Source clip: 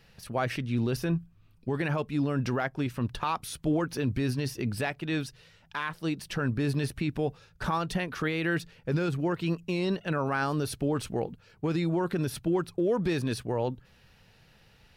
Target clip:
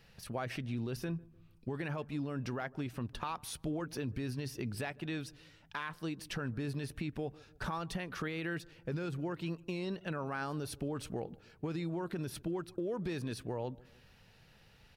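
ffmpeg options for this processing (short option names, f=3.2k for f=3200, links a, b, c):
-filter_complex "[0:a]acompressor=threshold=-34dB:ratio=2.5,asplit=2[a][b];[b]adelay=151,lowpass=f=840:p=1,volume=-21dB,asplit=2[c][d];[d]adelay=151,lowpass=f=840:p=1,volume=0.48,asplit=2[e][f];[f]adelay=151,lowpass=f=840:p=1,volume=0.48[g];[c][e][g]amix=inputs=3:normalize=0[h];[a][h]amix=inputs=2:normalize=0,volume=-3dB"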